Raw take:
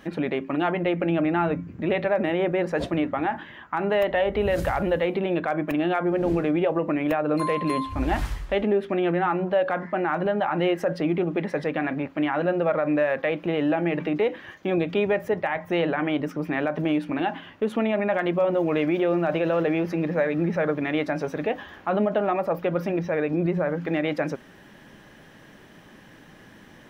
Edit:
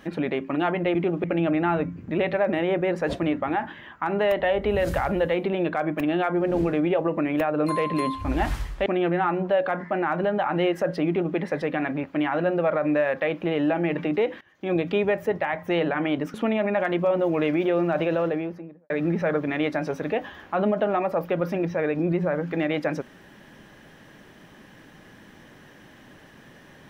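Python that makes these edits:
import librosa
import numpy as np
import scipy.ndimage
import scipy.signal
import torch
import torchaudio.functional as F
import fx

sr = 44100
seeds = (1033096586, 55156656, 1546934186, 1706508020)

y = fx.studio_fade_out(x, sr, start_s=19.37, length_s=0.87)
y = fx.edit(y, sr, fx.cut(start_s=8.57, length_s=0.31),
    fx.duplicate(start_s=11.09, length_s=0.29, to_s=0.95),
    fx.fade_in_from(start_s=14.43, length_s=0.32, curve='qua', floor_db=-20.5),
    fx.cut(start_s=16.36, length_s=1.32), tone=tone)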